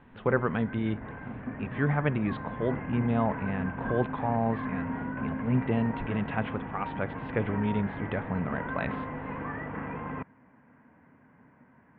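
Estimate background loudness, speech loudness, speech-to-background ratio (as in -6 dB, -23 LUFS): -37.0 LUFS, -31.0 LUFS, 6.0 dB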